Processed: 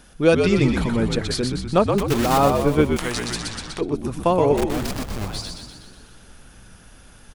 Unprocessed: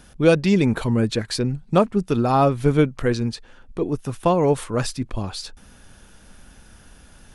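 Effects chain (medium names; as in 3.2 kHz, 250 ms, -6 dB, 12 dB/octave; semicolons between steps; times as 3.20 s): 1.98–2.39 s: block-companded coder 3-bit; peaking EQ 110 Hz -5.5 dB 1.4 oct; 4.56–5.26 s: Schmitt trigger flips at -30.5 dBFS; frequency-shifting echo 123 ms, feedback 58%, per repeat -65 Hz, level -5 dB; 2.96–3.81 s: spectrum-flattening compressor 2:1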